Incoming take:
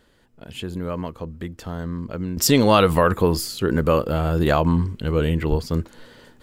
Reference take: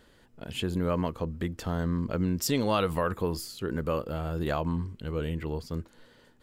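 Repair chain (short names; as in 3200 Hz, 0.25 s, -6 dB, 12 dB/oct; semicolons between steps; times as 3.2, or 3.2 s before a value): 5.49–5.61 HPF 140 Hz 24 dB/oct; gain 0 dB, from 2.37 s -11 dB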